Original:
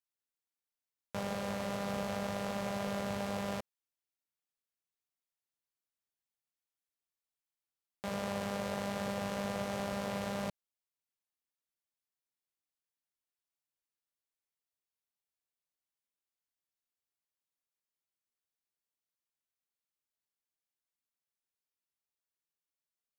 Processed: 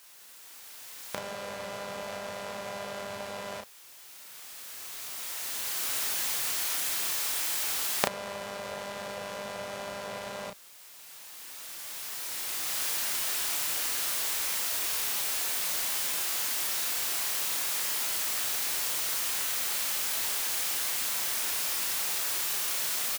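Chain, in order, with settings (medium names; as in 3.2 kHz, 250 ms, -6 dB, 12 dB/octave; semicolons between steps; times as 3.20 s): jump at every zero crossing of -46.5 dBFS; recorder AGC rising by 10 dB/s; bass shelf 390 Hz -11.5 dB; doubling 33 ms -5 dB; trim +1 dB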